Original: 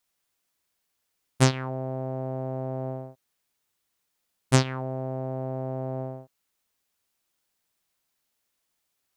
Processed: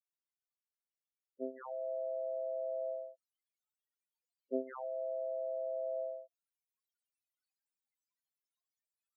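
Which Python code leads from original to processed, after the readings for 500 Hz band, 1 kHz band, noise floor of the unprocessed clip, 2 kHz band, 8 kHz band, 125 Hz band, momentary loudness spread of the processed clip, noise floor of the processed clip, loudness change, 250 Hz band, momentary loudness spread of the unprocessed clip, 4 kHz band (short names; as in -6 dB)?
-4.0 dB, -13.0 dB, -78 dBFS, under -25 dB, under -40 dB, under -40 dB, 7 LU, under -85 dBFS, -10.5 dB, -18.0 dB, 12 LU, under -40 dB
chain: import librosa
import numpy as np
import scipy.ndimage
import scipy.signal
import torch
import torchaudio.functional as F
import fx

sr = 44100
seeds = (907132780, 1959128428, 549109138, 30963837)

y = scipy.signal.sosfilt(scipy.signal.butter(2, 400.0, 'highpass', fs=sr, output='sos'), x)
y = fx.rider(y, sr, range_db=4, speed_s=0.5)
y = fx.spec_topn(y, sr, count=4)
y = F.gain(torch.from_numpy(y), -3.0).numpy()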